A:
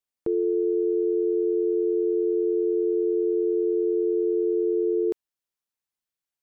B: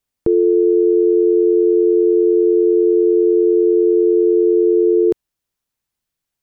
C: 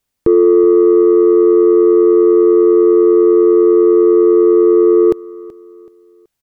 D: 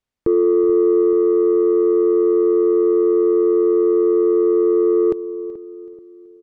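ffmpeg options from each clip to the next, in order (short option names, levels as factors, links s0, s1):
-af "lowshelf=f=200:g=11.5,volume=2.51"
-af "acontrast=51,aecho=1:1:378|756|1134:0.1|0.036|0.013"
-filter_complex "[0:a]aemphasis=mode=reproduction:type=50fm,asplit=2[s0][s1];[s1]adelay=432,lowpass=f=830:p=1,volume=0.2,asplit=2[s2][s3];[s3]adelay=432,lowpass=f=830:p=1,volume=0.43,asplit=2[s4][s5];[s5]adelay=432,lowpass=f=830:p=1,volume=0.43,asplit=2[s6][s7];[s7]adelay=432,lowpass=f=830:p=1,volume=0.43[s8];[s0][s2][s4][s6][s8]amix=inputs=5:normalize=0,volume=0.473"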